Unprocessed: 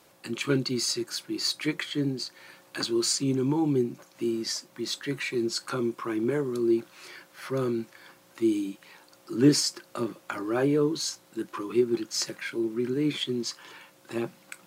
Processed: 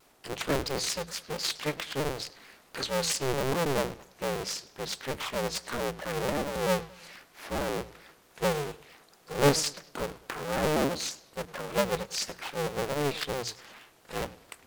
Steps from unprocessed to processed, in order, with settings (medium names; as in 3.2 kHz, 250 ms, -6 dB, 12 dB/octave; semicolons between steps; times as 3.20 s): cycle switcher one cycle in 2, inverted; hum notches 60/120/180 Hz; bucket-brigade echo 103 ms, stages 4096, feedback 39%, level -18.5 dB; vibrato with a chosen wave saw down 4.5 Hz, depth 160 cents; trim -3 dB